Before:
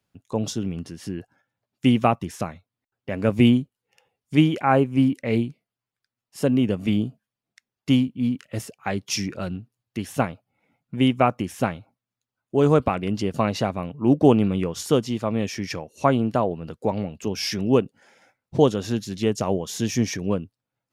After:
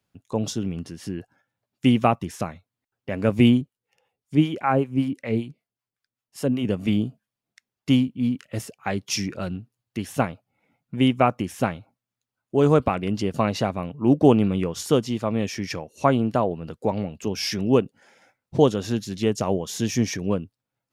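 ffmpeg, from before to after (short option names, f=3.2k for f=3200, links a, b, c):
-filter_complex "[0:a]asettb=1/sr,asplit=3[a][b][c];[a]atrim=end=3.614[d];[b]atrim=start=3.61:end=6.65,asetpts=PTS-STARTPTS,afade=t=in:d=0.004:c=qsin,afade=t=out:st=3.036:d=0.004:c=qsin,acrossover=split=610[e][f];[e]aeval=exprs='val(0)*(1-0.7/2+0.7/2*cos(2*PI*5.2*n/s))':c=same[g];[f]aeval=exprs='val(0)*(1-0.7/2-0.7/2*cos(2*PI*5.2*n/s))':c=same[h];[g][h]amix=inputs=2:normalize=0[i];[c]atrim=start=6.646[j];[d][i]acrossfade=d=0.004:c1=hsin:c2=qsin[k];[k][j]acrossfade=d=0.004:c1=qsin:c2=hsin"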